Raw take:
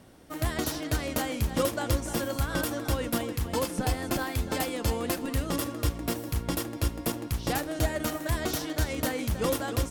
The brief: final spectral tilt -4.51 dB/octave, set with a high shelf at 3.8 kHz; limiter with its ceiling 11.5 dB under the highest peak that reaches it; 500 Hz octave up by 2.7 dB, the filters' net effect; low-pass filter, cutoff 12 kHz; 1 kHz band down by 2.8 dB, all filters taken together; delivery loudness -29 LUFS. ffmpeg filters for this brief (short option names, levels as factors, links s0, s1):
-af "lowpass=12000,equalizer=f=500:t=o:g=4.5,equalizer=f=1000:t=o:g=-6,highshelf=f=3800:g=4,volume=1.5,alimiter=limit=0.126:level=0:latency=1"